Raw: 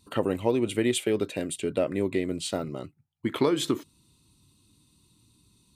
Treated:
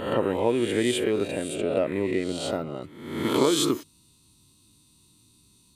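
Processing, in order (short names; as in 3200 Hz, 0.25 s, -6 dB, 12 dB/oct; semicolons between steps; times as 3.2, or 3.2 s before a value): spectral swells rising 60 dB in 0.85 s; tone controls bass -2 dB, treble -7 dB, from 2.81 s treble +4 dB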